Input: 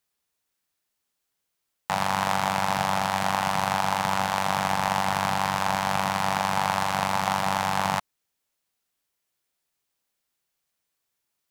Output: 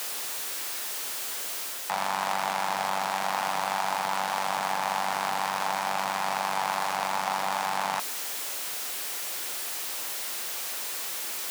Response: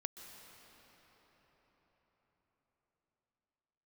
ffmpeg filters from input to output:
-af "aeval=exprs='val(0)+0.5*0.0631*sgn(val(0))':channel_layout=same,areverse,acompressor=mode=upward:threshold=-26dB:ratio=2.5,areverse,highpass=360,volume=-5.5dB"

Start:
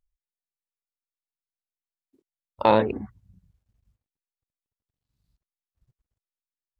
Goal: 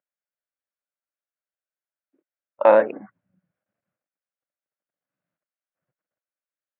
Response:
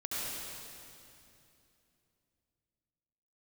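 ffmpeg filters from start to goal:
-af "highpass=frequency=220:width=0.5412,highpass=frequency=220:width=1.3066,equalizer=frequency=240:width_type=q:width=4:gain=-9,equalizer=frequency=400:width_type=q:width=4:gain=-9,equalizer=frequency=580:width_type=q:width=4:gain=9,equalizer=frequency=930:width_type=q:width=4:gain=-4,equalizer=frequency=1500:width_type=q:width=4:gain=6,lowpass=frequency=2300:width=0.5412,lowpass=frequency=2300:width=1.3066,volume=2dB"

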